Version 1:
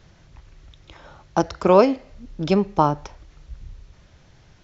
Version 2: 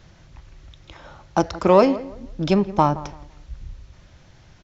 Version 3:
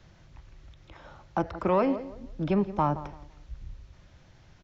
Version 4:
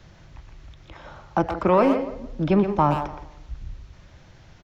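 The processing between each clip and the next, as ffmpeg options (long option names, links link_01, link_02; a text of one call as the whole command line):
ffmpeg -i in.wav -filter_complex "[0:a]bandreject=frequency=430:width=13,asplit=2[link_01][link_02];[link_02]asoftclip=type=tanh:threshold=-18.5dB,volume=-7dB[link_03];[link_01][link_03]amix=inputs=2:normalize=0,asplit=2[link_04][link_05];[link_05]adelay=169,lowpass=frequency=1300:poles=1,volume=-16.5dB,asplit=2[link_06][link_07];[link_07]adelay=169,lowpass=frequency=1300:poles=1,volume=0.31,asplit=2[link_08][link_09];[link_09]adelay=169,lowpass=frequency=1300:poles=1,volume=0.31[link_10];[link_04][link_06][link_08][link_10]amix=inputs=4:normalize=0,volume=-1dB" out.wav
ffmpeg -i in.wav -filter_complex "[0:a]acrossover=split=2800[link_01][link_02];[link_02]acompressor=threshold=-53dB:ratio=4:attack=1:release=60[link_03];[link_01][link_03]amix=inputs=2:normalize=0,highshelf=frequency=5700:gain=-4.5,acrossover=split=160|1100[link_04][link_05][link_06];[link_05]alimiter=limit=-13dB:level=0:latency=1[link_07];[link_04][link_07][link_06]amix=inputs=3:normalize=0,volume=-5.5dB" out.wav
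ffmpeg -i in.wav -filter_complex "[0:a]asplit=2[link_01][link_02];[link_02]adelay=120,highpass=300,lowpass=3400,asoftclip=type=hard:threshold=-21.5dB,volume=-6dB[link_03];[link_01][link_03]amix=inputs=2:normalize=0,volume=6dB" out.wav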